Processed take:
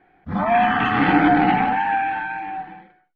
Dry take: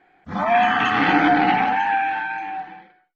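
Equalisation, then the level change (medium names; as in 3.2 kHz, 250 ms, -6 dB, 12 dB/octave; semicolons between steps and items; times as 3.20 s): distance through air 200 m; bass shelf 210 Hz +9 dB; 0.0 dB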